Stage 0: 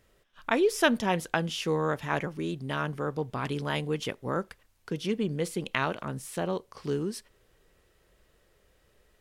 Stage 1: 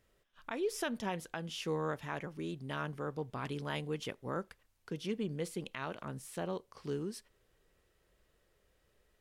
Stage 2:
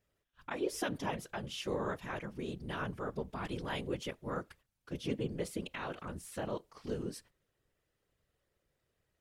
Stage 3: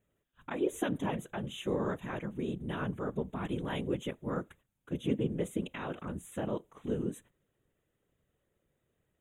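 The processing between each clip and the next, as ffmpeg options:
-af "alimiter=limit=-17dB:level=0:latency=1:release=235,volume=-7.5dB"
-af "agate=range=-8dB:threshold=-59dB:ratio=16:detection=peak,afftfilt=real='hypot(re,im)*cos(2*PI*random(0))':imag='hypot(re,im)*sin(2*PI*random(1))':win_size=512:overlap=0.75,volume=6dB"
-af "asuperstop=centerf=4900:order=12:qfactor=2.1,equalizer=f=220:t=o:w=2.3:g=7.5,volume=-1dB"

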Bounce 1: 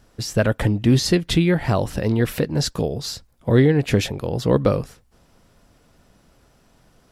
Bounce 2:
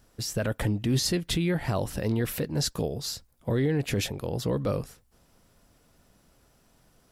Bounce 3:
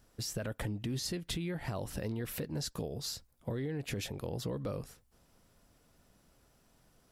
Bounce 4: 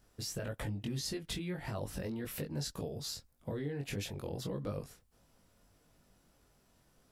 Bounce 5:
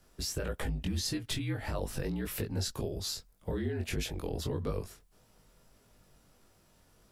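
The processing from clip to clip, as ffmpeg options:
-af "alimiter=limit=-11.5dB:level=0:latency=1:release=14,highshelf=f=8.4k:g=10,volume=-6.5dB"
-af "acompressor=threshold=-29dB:ratio=6,volume=-4.5dB"
-af "flanger=delay=19.5:depth=2.2:speed=1.7,volume=1.5dB"
-af "afreqshift=-49,volume=4.5dB"

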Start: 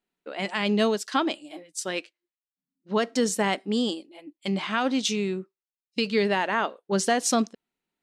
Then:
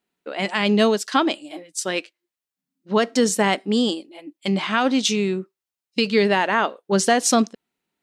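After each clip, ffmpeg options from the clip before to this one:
-af "highpass=50,volume=5.5dB"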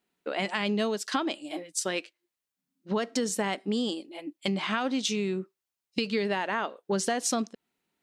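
-af "acompressor=threshold=-27dB:ratio=4"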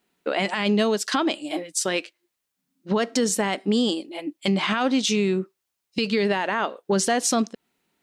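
-af "alimiter=limit=-20.5dB:level=0:latency=1:release=22,volume=7.5dB"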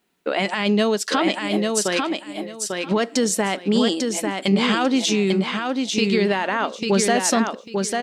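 -af "aecho=1:1:846|1692|2538:0.631|0.126|0.0252,volume=2dB"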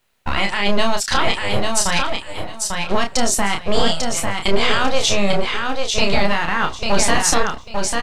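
-filter_complex "[0:a]acrossover=split=890[a][b];[a]aeval=exprs='abs(val(0))':c=same[c];[c][b]amix=inputs=2:normalize=0,asplit=2[d][e];[e]adelay=30,volume=-5.5dB[f];[d][f]amix=inputs=2:normalize=0,volume=3.5dB"

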